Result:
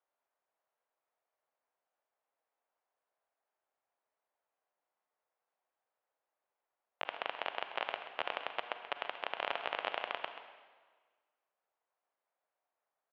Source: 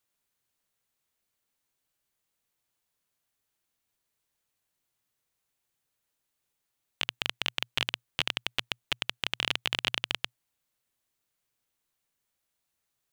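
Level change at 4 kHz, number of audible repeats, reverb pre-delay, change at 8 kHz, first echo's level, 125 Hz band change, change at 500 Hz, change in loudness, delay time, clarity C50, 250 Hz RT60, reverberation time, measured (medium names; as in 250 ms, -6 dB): -14.0 dB, 1, 37 ms, under -30 dB, -11.5 dB, under -20 dB, +3.5 dB, -8.0 dB, 132 ms, 6.5 dB, 1.4 s, 1.5 s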